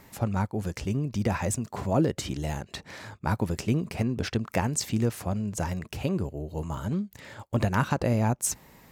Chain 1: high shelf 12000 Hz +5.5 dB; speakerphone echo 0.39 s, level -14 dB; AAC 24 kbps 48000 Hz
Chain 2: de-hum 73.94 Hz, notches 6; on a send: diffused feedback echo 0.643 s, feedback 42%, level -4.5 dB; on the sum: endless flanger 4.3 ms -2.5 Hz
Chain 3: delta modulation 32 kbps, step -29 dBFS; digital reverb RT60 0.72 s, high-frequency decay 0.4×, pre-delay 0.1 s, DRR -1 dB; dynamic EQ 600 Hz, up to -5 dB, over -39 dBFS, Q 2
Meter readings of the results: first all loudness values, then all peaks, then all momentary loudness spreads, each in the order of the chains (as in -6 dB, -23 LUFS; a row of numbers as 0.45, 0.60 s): -28.5, -31.0, -26.5 LUFS; -9.5, -15.0, -9.5 dBFS; 9, 6, 6 LU